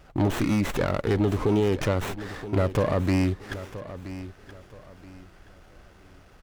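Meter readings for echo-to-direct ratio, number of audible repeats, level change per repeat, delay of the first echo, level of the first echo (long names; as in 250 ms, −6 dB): −13.5 dB, 3, −10.5 dB, 975 ms, −14.0 dB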